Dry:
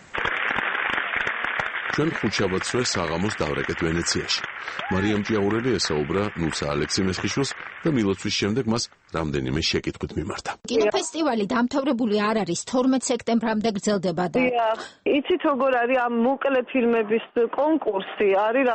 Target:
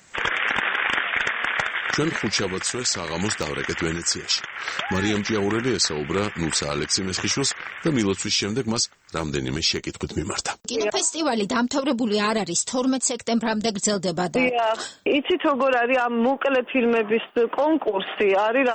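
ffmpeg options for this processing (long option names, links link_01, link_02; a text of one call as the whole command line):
ffmpeg -i in.wav -af "aemphasis=mode=production:type=75fm,dynaudnorm=framelen=100:gausssize=3:maxgain=11dB,volume=-8.5dB" out.wav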